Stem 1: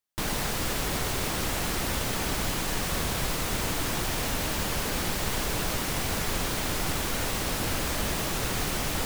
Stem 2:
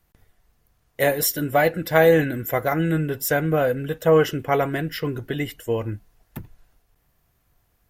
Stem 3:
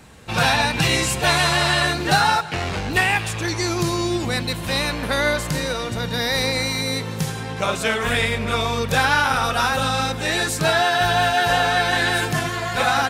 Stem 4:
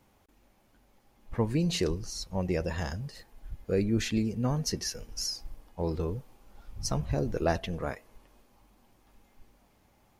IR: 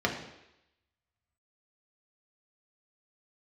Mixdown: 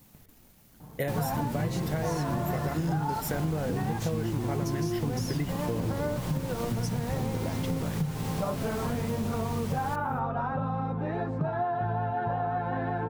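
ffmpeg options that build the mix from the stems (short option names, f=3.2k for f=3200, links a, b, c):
-filter_complex "[0:a]adelay=900,volume=-8.5dB[a];[1:a]acompressor=threshold=-21dB:ratio=6,volume=-4.5dB[b];[2:a]flanger=delay=6.6:depth=2.5:regen=53:speed=0.4:shape=sinusoidal,lowpass=f=930:t=q:w=1.8,adelay=800,volume=-5dB[c];[3:a]aemphasis=mode=production:type=75fm,acompressor=threshold=-34dB:ratio=6,aeval=exprs='val(0)*gte(abs(val(0)),0.00112)':c=same,volume=1dB[d];[a][b][c][d]amix=inputs=4:normalize=0,equalizer=f=160:t=o:w=1.9:g=12,acompressor=threshold=-27dB:ratio=5"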